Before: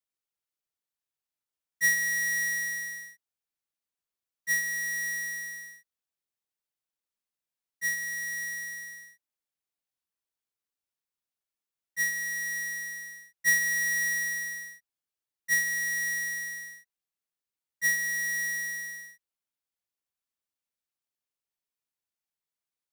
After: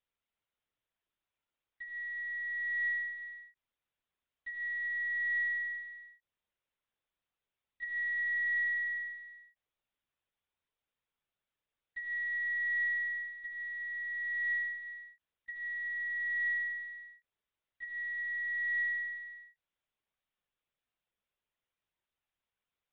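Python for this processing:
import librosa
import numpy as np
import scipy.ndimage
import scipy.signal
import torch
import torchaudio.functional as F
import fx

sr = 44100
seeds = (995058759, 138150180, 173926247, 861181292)

y = fx.over_compress(x, sr, threshold_db=-36.0, ratio=-1.0)
y = y + 10.0 ** (-11.0 / 20.0) * np.pad(y, (int(365 * sr / 1000.0), 0))[:len(y)]
y = fx.lpc_vocoder(y, sr, seeds[0], excitation='pitch_kept', order=16)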